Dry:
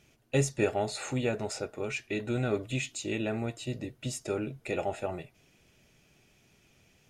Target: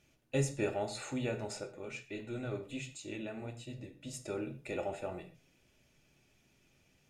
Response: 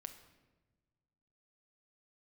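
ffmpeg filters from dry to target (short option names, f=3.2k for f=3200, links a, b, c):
-filter_complex "[0:a]asettb=1/sr,asplit=3[a][b][c];[a]atrim=end=1.634[d];[b]atrim=start=1.63:end=4.14,asetpts=PTS-STARTPTS,afade=t=in:d=0.004:c=qsin,afade=t=out:st=2.506:d=0.004:c=qsin,flanger=delay=5.7:depth=8.3:regen=-48:speed=1.5:shape=sinusoidal[e];[c]atrim=start=4.136[f];[d][e]acrossfade=d=0.004:c1=hsin:c2=qsin[g];[g][f]acrossfade=d=0.004:c1=qsin:c2=hsin[h];[1:a]atrim=start_sample=2205,afade=t=out:st=0.31:d=0.01,atrim=end_sample=14112,asetrate=79380,aresample=44100[i];[h][i]afir=irnorm=-1:irlink=0,volume=4dB"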